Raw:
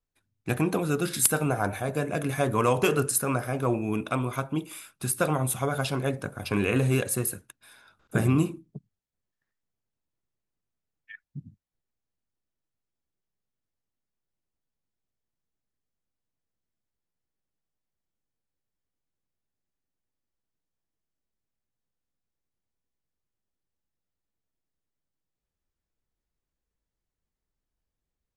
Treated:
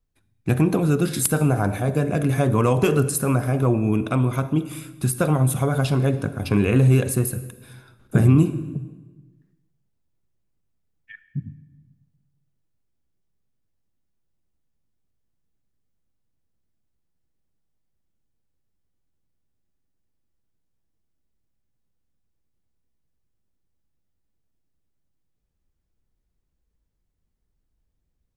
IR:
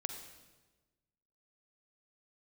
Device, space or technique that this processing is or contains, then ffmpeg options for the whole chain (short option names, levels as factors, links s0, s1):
ducked reverb: -filter_complex "[0:a]asplit=3[s0][s1][s2];[1:a]atrim=start_sample=2205[s3];[s1][s3]afir=irnorm=-1:irlink=0[s4];[s2]apad=whole_len=1250909[s5];[s4][s5]sidechaincompress=threshold=0.0447:ratio=8:attack=16:release=112,volume=0.75[s6];[s0][s6]amix=inputs=2:normalize=0,lowshelf=f=340:g=11,volume=0.75"